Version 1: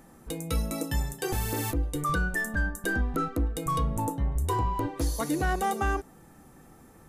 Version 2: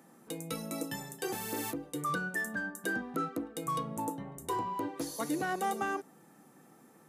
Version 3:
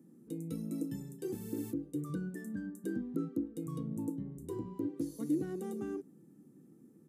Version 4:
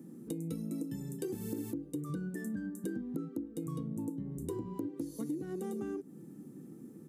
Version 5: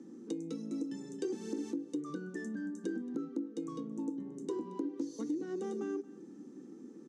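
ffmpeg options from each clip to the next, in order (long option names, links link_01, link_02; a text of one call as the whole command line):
ffmpeg -i in.wav -af "highpass=frequency=160:width=0.5412,highpass=frequency=160:width=1.3066,volume=-4.5dB" out.wav
ffmpeg -i in.wav -af "firequalizer=gain_entry='entry(330,0);entry(680,-24);entry(8000,-15)':delay=0.05:min_phase=1,volume=2.5dB" out.wav
ffmpeg -i in.wav -af "acompressor=threshold=-45dB:ratio=6,volume=9.5dB" out.wav
ffmpeg -i in.wav -af "highpass=frequency=240:width=0.5412,highpass=frequency=240:width=1.3066,equalizer=frequency=630:width_type=q:width=4:gain=-6,equalizer=frequency=2300:width_type=q:width=4:gain=-3,equalizer=frequency=6100:width_type=q:width=4:gain=6,lowpass=frequency=6500:width=0.5412,lowpass=frequency=6500:width=1.3066,aecho=1:1:226:0.106,volume=2.5dB" out.wav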